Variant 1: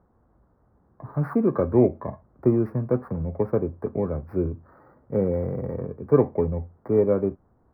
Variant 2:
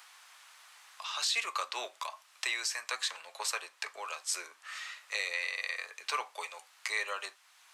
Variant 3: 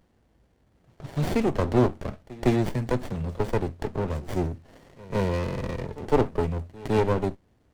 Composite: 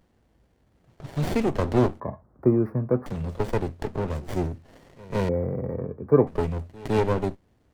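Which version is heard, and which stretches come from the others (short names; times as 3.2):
3
2–3.06 from 1
5.29–6.27 from 1
not used: 2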